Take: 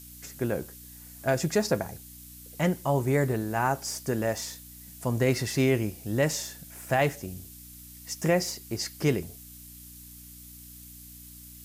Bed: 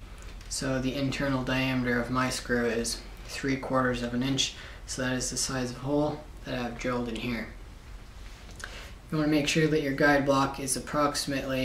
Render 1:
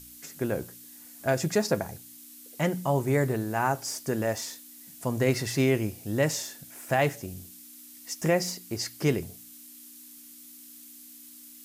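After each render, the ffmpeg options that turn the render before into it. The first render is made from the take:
ffmpeg -i in.wav -af "bandreject=frequency=60:width_type=h:width=4,bandreject=frequency=120:width_type=h:width=4,bandreject=frequency=180:width_type=h:width=4" out.wav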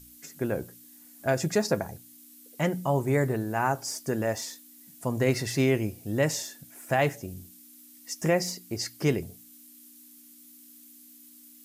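ffmpeg -i in.wav -af "afftdn=noise_reduction=6:noise_floor=-49" out.wav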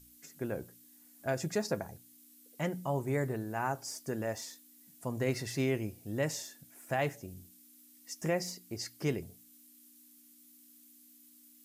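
ffmpeg -i in.wav -af "volume=-7.5dB" out.wav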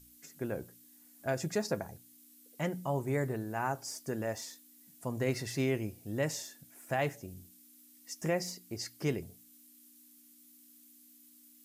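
ffmpeg -i in.wav -af anull out.wav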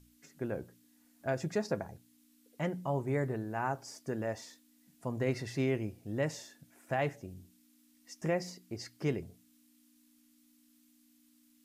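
ffmpeg -i in.wav -af "aemphasis=mode=reproduction:type=50kf" out.wav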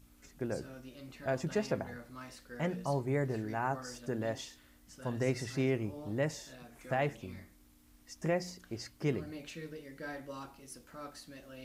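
ffmpeg -i in.wav -i bed.wav -filter_complex "[1:a]volume=-20.5dB[link_01];[0:a][link_01]amix=inputs=2:normalize=0" out.wav

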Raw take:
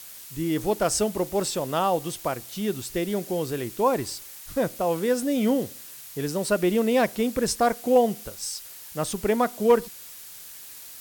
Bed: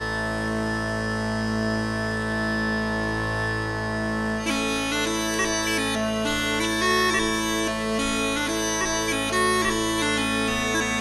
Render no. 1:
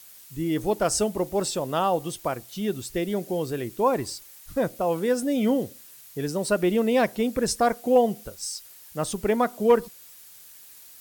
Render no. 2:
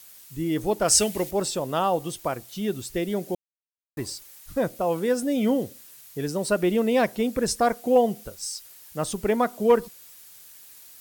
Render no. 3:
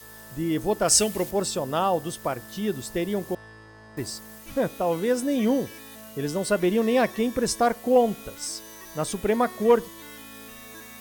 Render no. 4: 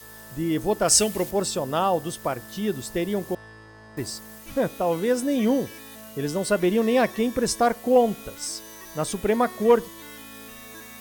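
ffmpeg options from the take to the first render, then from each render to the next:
ffmpeg -i in.wav -af "afftdn=noise_reduction=7:noise_floor=-43" out.wav
ffmpeg -i in.wav -filter_complex "[0:a]asettb=1/sr,asplit=3[link_01][link_02][link_03];[link_01]atrim=end=0.884[link_04];[link_02]atrim=start=0.88:end=1.31,asetpts=PTS-STARTPTS,afade=type=in:duration=0.004:curve=qsin,afade=type=out:start_time=0.426:duration=0.004:curve=qsin,highshelf=frequency=1500:width_type=q:width=1.5:gain=8[link_05];[link_03]atrim=start=1.306[link_06];[link_04][link_05]acrossfade=duration=0.004:curve1=hsin:curve2=qsin[link_07];[link_07][link_06]acrossfade=duration=0.004:curve1=qsin:curve2=hsin,asplit=3[link_08][link_09][link_10];[link_08]atrim=end=3.35,asetpts=PTS-STARTPTS,afade=type=out:start_time=3.346:duration=0.004:curve=hsin[link_11];[link_09]atrim=start=3.35:end=3.97,asetpts=PTS-STARTPTS,volume=0[link_12];[link_10]atrim=start=3.97,asetpts=PTS-STARTPTS,afade=type=in:duration=0.004:curve=hsin[link_13];[link_11][link_12][link_13]concat=n=3:v=0:a=1" out.wav
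ffmpeg -i in.wav -i bed.wav -filter_complex "[1:a]volume=-21dB[link_01];[0:a][link_01]amix=inputs=2:normalize=0" out.wav
ffmpeg -i in.wav -af "volume=1dB" out.wav

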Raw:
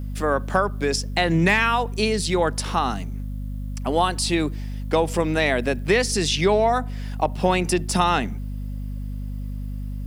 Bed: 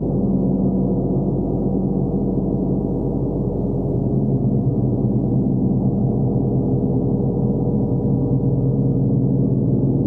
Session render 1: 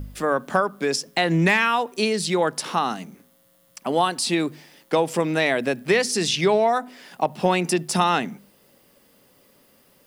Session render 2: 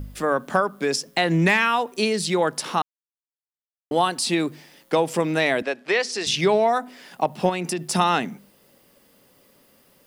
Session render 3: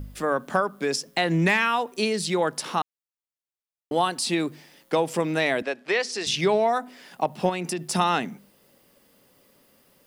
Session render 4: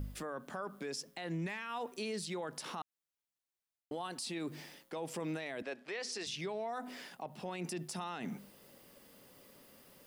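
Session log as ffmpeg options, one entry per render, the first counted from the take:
ffmpeg -i in.wav -af "bandreject=frequency=50:width_type=h:width=4,bandreject=frequency=100:width_type=h:width=4,bandreject=frequency=150:width_type=h:width=4,bandreject=frequency=200:width_type=h:width=4,bandreject=frequency=250:width_type=h:width=4" out.wav
ffmpeg -i in.wav -filter_complex "[0:a]asettb=1/sr,asplit=3[link_01][link_02][link_03];[link_01]atrim=end=5.624[link_04];[link_02]atrim=start=5.62:end=6.27,asetpts=PTS-STARTPTS,afade=type=in:duration=0.004:curve=qsin,afade=type=out:start_time=0.646:duration=0.004:curve=qsin,highpass=450,lowpass=5400[link_05];[link_03]atrim=start=6.266[link_06];[link_04][link_05]acrossfade=duration=0.004:curve1=hsin:curve2=qsin[link_07];[link_07][link_06]acrossfade=duration=0.004:curve1=qsin:curve2=hsin,asettb=1/sr,asplit=3[link_08][link_09][link_10];[link_08]atrim=end=7.494[link_11];[link_09]atrim=start=7.49:end=7.9,asetpts=PTS-STARTPTS,afade=type=in:duration=0.004:curve=qsin,afade=type=out:start_time=0.406:duration=0.004:curve=qsin,acompressor=threshold=-24dB:ratio=2.5:attack=3.2:release=140:knee=1:detection=peak[link_12];[link_10]atrim=start=7.896[link_13];[link_11][link_12]acrossfade=duration=0.004:curve1=hsin:curve2=qsin[link_14];[link_14][link_13]acrossfade=duration=0.004:curve1=qsin:curve2=hsin,asplit=3[link_15][link_16][link_17];[link_15]atrim=end=2.82,asetpts=PTS-STARTPTS,afade=type=out:start_time=2.816:duration=0.004:curve=hsin[link_18];[link_16]atrim=start=2.82:end=3.91,asetpts=PTS-STARTPTS,volume=0[link_19];[link_17]atrim=start=3.91,asetpts=PTS-STARTPTS,afade=type=in:duration=0.004:curve=hsin[link_20];[link_18][link_19][link_20]concat=n=3:v=0:a=1" out.wav
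ffmpeg -i in.wav -af "volume=-2.5dB" out.wav
ffmpeg -i in.wav -af "areverse,acompressor=threshold=-30dB:ratio=6,areverse,alimiter=level_in=7.5dB:limit=-24dB:level=0:latency=1:release=119,volume=-7.5dB" out.wav

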